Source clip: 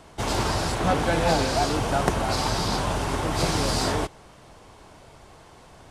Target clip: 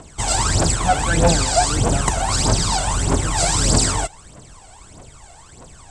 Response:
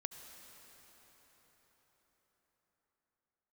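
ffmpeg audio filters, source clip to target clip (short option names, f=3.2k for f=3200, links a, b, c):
-af "aphaser=in_gain=1:out_gain=1:delay=1.5:decay=0.73:speed=1.6:type=triangular,lowpass=f=7.9k:t=q:w=7.4"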